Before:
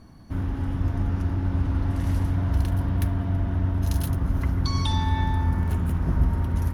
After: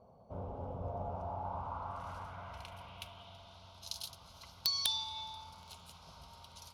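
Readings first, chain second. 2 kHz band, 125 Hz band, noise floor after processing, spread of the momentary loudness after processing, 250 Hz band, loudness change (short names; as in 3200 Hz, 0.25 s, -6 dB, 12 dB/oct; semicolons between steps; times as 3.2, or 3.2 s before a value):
-16.0 dB, -26.0 dB, -59 dBFS, 21 LU, -25.5 dB, -14.5 dB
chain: fixed phaser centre 740 Hz, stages 4; band-pass sweep 510 Hz -> 4200 Hz, 0.81–3.56; wrapped overs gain 26 dB; gain +6 dB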